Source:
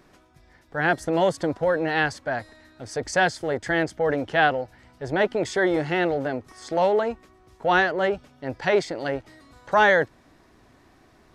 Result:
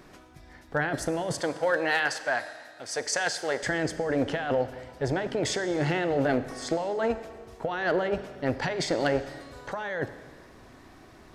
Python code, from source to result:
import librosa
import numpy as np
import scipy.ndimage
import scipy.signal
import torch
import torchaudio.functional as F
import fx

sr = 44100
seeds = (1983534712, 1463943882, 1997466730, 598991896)

y = fx.highpass(x, sr, hz=1100.0, slope=6, at=(1.4, 3.63))
y = fx.over_compress(y, sr, threshold_db=-27.0, ratio=-1.0)
y = np.clip(y, -10.0 ** (-16.5 / 20.0), 10.0 ** (-16.5 / 20.0))
y = fx.rev_schroeder(y, sr, rt60_s=1.6, comb_ms=28, drr_db=11.5)